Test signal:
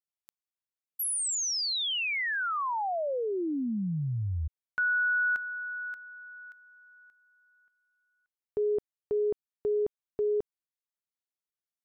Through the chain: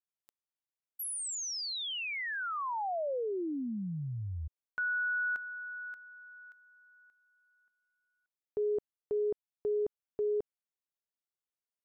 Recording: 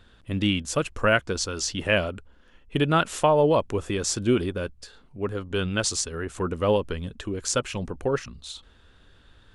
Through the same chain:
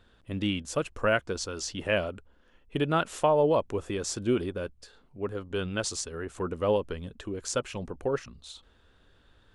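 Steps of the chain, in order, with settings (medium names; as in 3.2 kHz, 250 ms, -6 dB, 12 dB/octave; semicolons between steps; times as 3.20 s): peaking EQ 560 Hz +4 dB 2.2 oct; trim -7 dB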